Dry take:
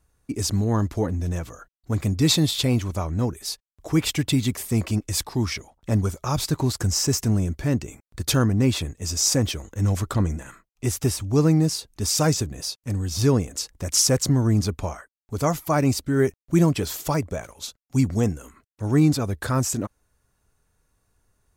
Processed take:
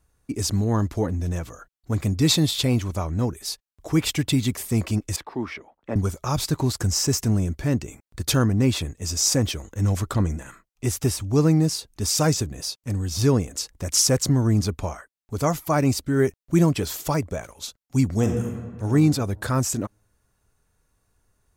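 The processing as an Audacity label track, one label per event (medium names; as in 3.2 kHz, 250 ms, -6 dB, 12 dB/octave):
5.160000	5.960000	three-band isolator lows -17 dB, under 220 Hz, highs -23 dB, over 2.8 kHz
18.150000	18.880000	reverb throw, RT60 1.6 s, DRR 3 dB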